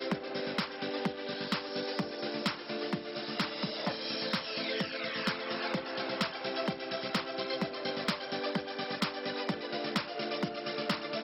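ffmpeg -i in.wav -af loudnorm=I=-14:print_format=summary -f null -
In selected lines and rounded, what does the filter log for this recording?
Input Integrated:    -34.8 LUFS
Input True Peak:     -20.2 dBTP
Input LRA:             0.9 LU
Input Threshold:     -44.8 LUFS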